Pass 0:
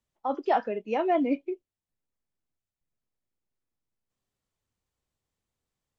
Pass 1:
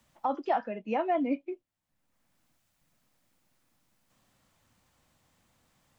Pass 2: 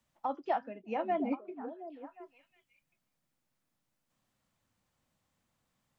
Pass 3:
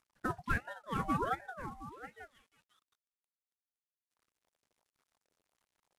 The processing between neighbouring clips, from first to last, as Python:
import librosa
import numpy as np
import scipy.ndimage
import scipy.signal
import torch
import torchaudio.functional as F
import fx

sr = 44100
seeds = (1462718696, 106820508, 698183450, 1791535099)

y1 = fx.peak_eq(x, sr, hz=410.0, db=-12.0, octaves=0.35)
y1 = fx.band_squash(y1, sr, depth_pct=70)
y1 = F.gain(torch.from_numpy(y1), -1.0).numpy()
y2 = fx.echo_stepped(y1, sr, ms=360, hz=170.0, octaves=1.4, feedback_pct=70, wet_db=-1.5)
y2 = fx.upward_expand(y2, sr, threshold_db=-39.0, expansion=1.5)
y2 = F.gain(torch.from_numpy(y2), -3.0).numpy()
y3 = fx.cvsd(y2, sr, bps=64000)
y3 = fx.ring_lfo(y3, sr, carrier_hz=800.0, swing_pct=50, hz=1.4)
y3 = F.gain(torch.from_numpy(y3), 1.5).numpy()